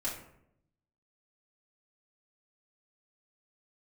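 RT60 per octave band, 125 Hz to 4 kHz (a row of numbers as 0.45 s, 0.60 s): 1.1 s, 0.95 s, 0.80 s, 0.65 s, 0.60 s, 0.40 s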